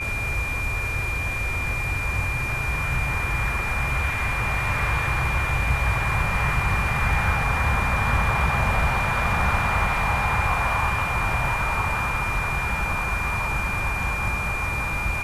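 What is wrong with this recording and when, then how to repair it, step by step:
whistle 2,400 Hz −27 dBFS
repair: notch filter 2,400 Hz, Q 30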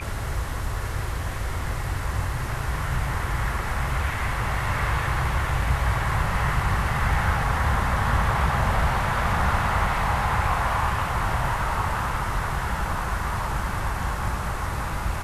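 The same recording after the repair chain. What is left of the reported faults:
none of them is left

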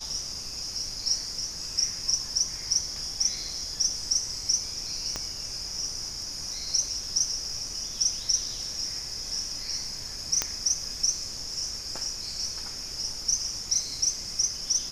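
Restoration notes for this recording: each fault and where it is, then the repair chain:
0:05.16: click −16 dBFS
0:10.42: click −8 dBFS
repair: click removal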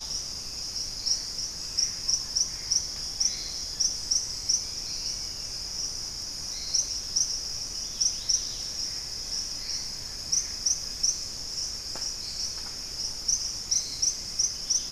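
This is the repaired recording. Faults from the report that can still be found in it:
0:05.16: click

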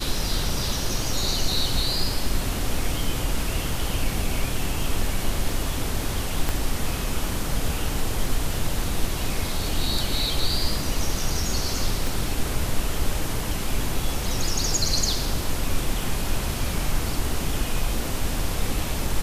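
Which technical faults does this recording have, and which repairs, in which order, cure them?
0:06.49: click −9 dBFS
0:12.07: click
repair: click removal

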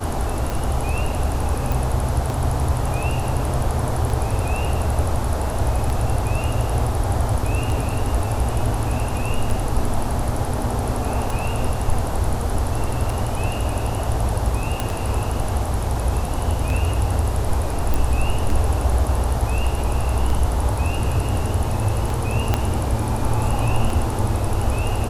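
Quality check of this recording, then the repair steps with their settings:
scratch tick 33 1/3 rpm
0:01.72: click
0:14.80: click
0:17.94: click
0:22.54: click −5 dBFS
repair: click removal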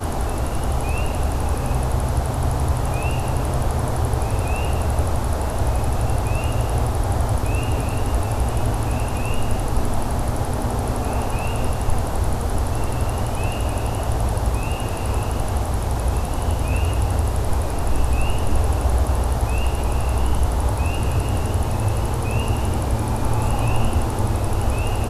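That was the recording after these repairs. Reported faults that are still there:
0:22.54: click

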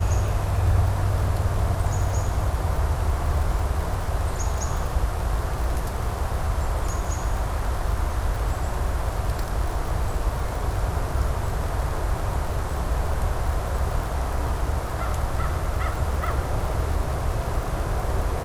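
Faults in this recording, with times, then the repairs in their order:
surface crackle 51 per second −29 dBFS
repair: click removal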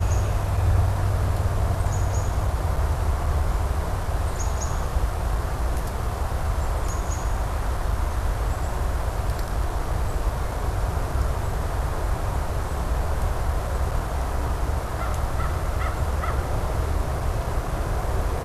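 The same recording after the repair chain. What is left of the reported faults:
none of them is left

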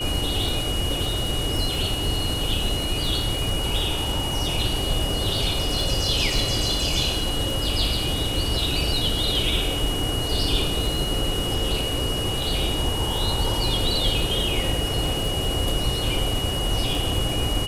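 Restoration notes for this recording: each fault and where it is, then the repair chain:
surface crackle 24 per second −27 dBFS
whistle 2,900 Hz −28 dBFS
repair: click removal
notch filter 2,900 Hz, Q 30

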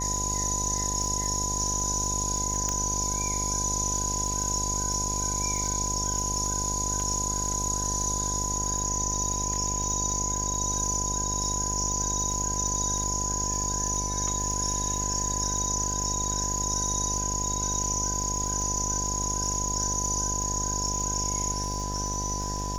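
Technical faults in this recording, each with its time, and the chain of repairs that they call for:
mains buzz 50 Hz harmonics 18 −33 dBFS
surface crackle 46 per second −33 dBFS
whistle 1,000 Hz −34 dBFS
0:02.69: click −14 dBFS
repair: click removal
notch filter 1,000 Hz, Q 30
hum removal 50 Hz, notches 18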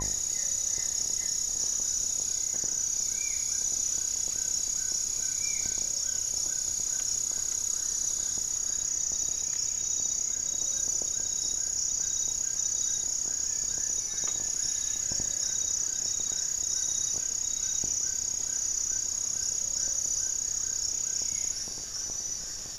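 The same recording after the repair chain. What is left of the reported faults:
0:02.69: click

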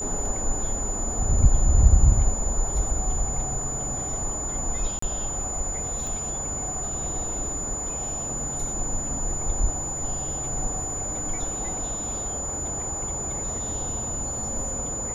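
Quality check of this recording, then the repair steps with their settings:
whistle 7,000 Hz −29 dBFS
0:04.99–0:05.02: drop-out 34 ms
0:06.07: click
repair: click removal
notch filter 7,000 Hz, Q 30
repair the gap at 0:04.99, 34 ms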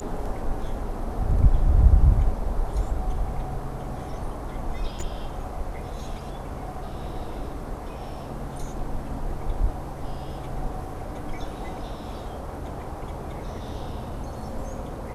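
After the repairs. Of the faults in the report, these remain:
whistle 7,000 Hz

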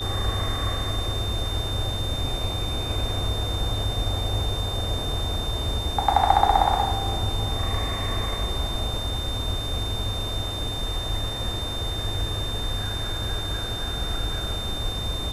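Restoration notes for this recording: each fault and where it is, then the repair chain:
whistle 3,600 Hz −31 dBFS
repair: notch filter 3,600 Hz, Q 30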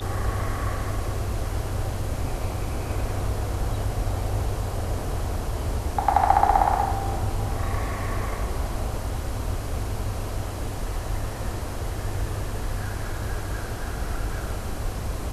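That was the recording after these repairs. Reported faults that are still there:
none of them is left

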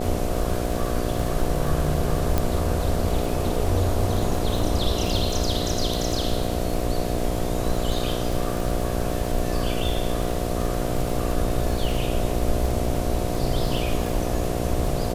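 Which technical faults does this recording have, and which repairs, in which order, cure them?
mains buzz 60 Hz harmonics 12 −28 dBFS
surface crackle 33 per second −26 dBFS
0:02.38: click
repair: click removal
hum removal 60 Hz, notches 12

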